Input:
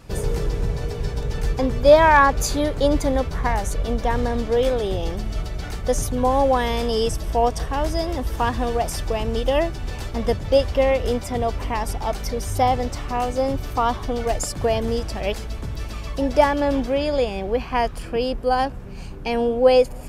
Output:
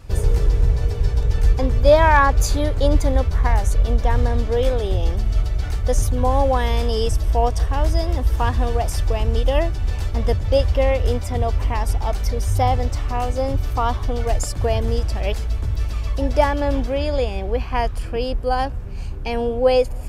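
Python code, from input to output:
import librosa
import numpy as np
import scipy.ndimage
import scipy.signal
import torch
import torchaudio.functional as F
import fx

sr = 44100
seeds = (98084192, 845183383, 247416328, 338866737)

y = fx.low_shelf_res(x, sr, hz=120.0, db=8.0, q=1.5)
y = F.gain(torch.from_numpy(y), -1.0).numpy()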